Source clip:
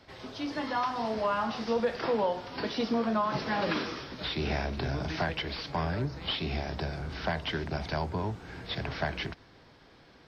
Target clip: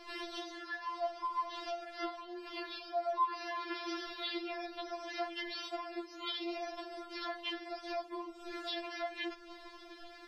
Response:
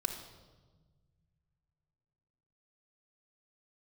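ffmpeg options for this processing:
-filter_complex "[0:a]asettb=1/sr,asplit=3[a][b][c];[a]atrim=end=0.504[d];[b]atrim=start=0.5:end=1.24,asetpts=PTS-STARTPTS,afade=t=in:d=0.004:c=qsin,afade=t=out:st=0.736:d=0.004:c=qsin,highshelf=f=5.7k:g=-6.5[e];[c]atrim=start=1.236[f];[d][e]acrossfade=d=0.004:c1=hsin:c2=qsin[g];[g][f]acrossfade=d=0.004:c1=qsin:c2=hsin,asettb=1/sr,asplit=3[h][i][j];[h]atrim=end=5.484[k];[i]atrim=start=5.48:end=6.62,asetpts=PTS-STARTPTS,afade=t=in:d=0.004:c=qsin,afade=t=out:st=1.136:d=0.004:c=qsin,highpass=f=130:p=1[l];[j]atrim=start=6.616[m];[k][l]acrossfade=d=0.004:c1=hsin:c2=qsin[n];[n][m]acrossfade=d=0.004:c1=qsin:c2=hsin,acompressor=threshold=-43dB:ratio=6,flanger=delay=7.6:depth=5.5:regen=67:speed=0.72:shape=sinusoidal,afftfilt=real='re*4*eq(mod(b,16),0)':imag='im*4*eq(mod(b,16),0)':win_size=2048:overlap=0.75,volume=13dB"

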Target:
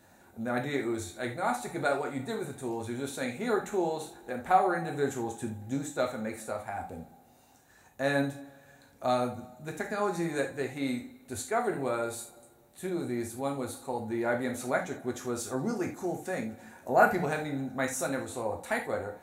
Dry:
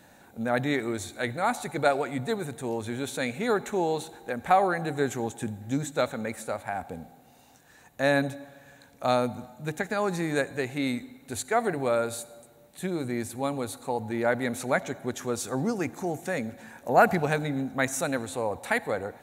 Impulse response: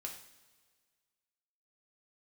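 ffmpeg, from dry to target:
-filter_complex "[0:a]equalizer=f=2.8k:t=o:w=1.3:g=-4[a];[1:a]atrim=start_sample=2205,atrim=end_sample=3969[b];[a][b]afir=irnorm=-1:irlink=0"

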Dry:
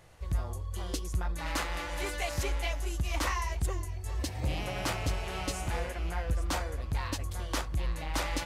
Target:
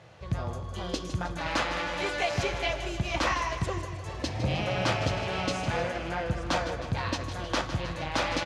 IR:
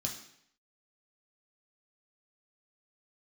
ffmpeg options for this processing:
-filter_complex "[0:a]highpass=130,lowpass=4.2k,aecho=1:1:156|312|468|624|780|936|1092:0.282|0.166|0.0981|0.0579|0.0342|0.0201|0.0119,asplit=2[a][b];[1:a]atrim=start_sample=2205[c];[b][c]afir=irnorm=-1:irlink=0,volume=-9.5dB[d];[a][d]amix=inputs=2:normalize=0,volume=4.5dB"

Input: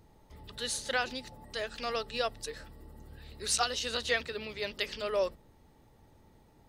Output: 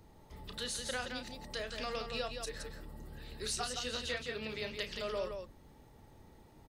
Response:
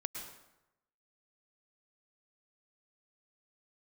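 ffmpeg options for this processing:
-filter_complex "[0:a]acrossover=split=200[a][b];[b]acompressor=threshold=-40dB:ratio=3[c];[a][c]amix=inputs=2:normalize=0,aecho=1:1:32.07|169.1:0.316|0.501,volume=1dB"

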